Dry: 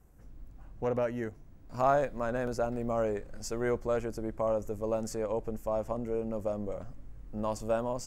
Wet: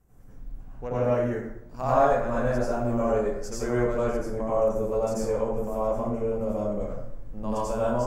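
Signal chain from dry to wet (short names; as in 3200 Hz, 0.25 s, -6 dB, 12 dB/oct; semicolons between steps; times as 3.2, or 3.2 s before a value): plate-style reverb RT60 0.79 s, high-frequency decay 0.55×, pre-delay 75 ms, DRR -8.5 dB; gain -4 dB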